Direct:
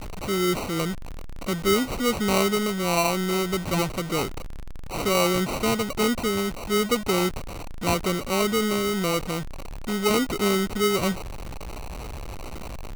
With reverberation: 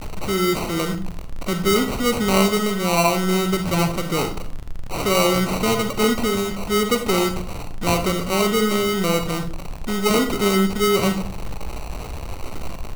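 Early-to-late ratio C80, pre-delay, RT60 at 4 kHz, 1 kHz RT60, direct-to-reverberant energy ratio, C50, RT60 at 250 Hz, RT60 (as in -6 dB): 15.0 dB, 40 ms, 0.30 s, 0.45 s, 7.0 dB, 10.0 dB, 0.75 s, 0.45 s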